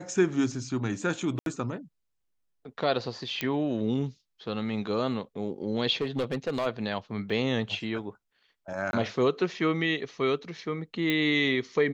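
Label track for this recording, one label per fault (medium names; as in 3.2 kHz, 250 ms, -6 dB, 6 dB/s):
1.390000	1.460000	dropout 72 ms
3.410000	3.410000	pop -13 dBFS
6.010000	6.670000	clipped -23.5 dBFS
7.300000	7.300000	dropout 2.8 ms
8.910000	8.930000	dropout 21 ms
11.100000	11.100000	pop -14 dBFS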